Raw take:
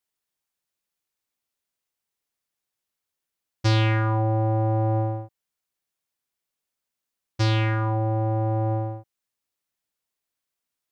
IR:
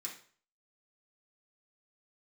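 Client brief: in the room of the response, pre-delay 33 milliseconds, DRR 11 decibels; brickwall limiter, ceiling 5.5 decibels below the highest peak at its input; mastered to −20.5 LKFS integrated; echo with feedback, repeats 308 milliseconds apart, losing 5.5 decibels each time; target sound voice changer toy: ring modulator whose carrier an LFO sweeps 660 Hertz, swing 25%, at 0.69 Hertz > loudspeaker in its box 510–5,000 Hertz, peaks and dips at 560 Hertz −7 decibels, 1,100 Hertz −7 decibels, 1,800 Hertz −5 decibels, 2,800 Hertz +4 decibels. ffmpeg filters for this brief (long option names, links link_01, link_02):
-filter_complex "[0:a]alimiter=limit=-17dB:level=0:latency=1,aecho=1:1:308|616|924|1232|1540|1848|2156:0.531|0.281|0.149|0.079|0.0419|0.0222|0.0118,asplit=2[link_01][link_02];[1:a]atrim=start_sample=2205,adelay=33[link_03];[link_02][link_03]afir=irnorm=-1:irlink=0,volume=-9dB[link_04];[link_01][link_04]amix=inputs=2:normalize=0,aeval=exprs='val(0)*sin(2*PI*660*n/s+660*0.25/0.69*sin(2*PI*0.69*n/s))':channel_layout=same,highpass=510,equalizer=frequency=560:width_type=q:width=4:gain=-7,equalizer=frequency=1100:width_type=q:width=4:gain=-7,equalizer=frequency=1800:width_type=q:width=4:gain=-5,equalizer=frequency=2800:width_type=q:width=4:gain=4,lowpass=frequency=5000:width=0.5412,lowpass=frequency=5000:width=1.3066,volume=9.5dB"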